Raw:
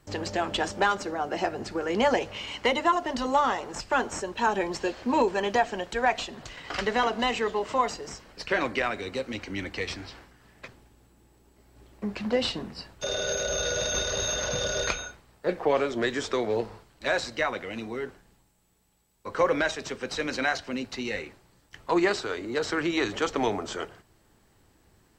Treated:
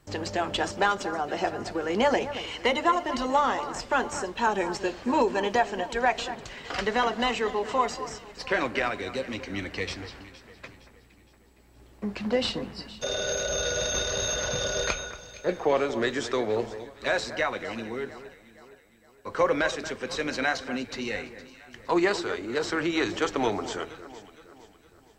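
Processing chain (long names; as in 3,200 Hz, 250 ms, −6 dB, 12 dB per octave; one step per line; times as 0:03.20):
on a send: delay that swaps between a low-pass and a high-pass 232 ms, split 2,000 Hz, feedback 66%, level −12.5 dB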